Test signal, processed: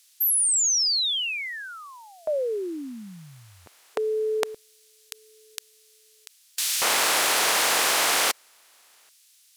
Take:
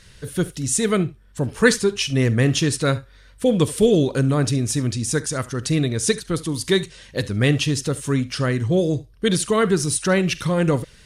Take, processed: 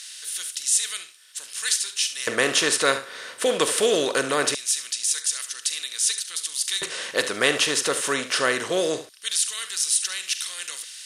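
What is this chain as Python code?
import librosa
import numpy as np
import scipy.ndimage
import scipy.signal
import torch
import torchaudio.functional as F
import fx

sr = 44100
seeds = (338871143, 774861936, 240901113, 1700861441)

y = fx.bin_compress(x, sr, power=0.6)
y = fx.filter_lfo_highpass(y, sr, shape='square', hz=0.22, low_hz=590.0, high_hz=3800.0, q=0.72)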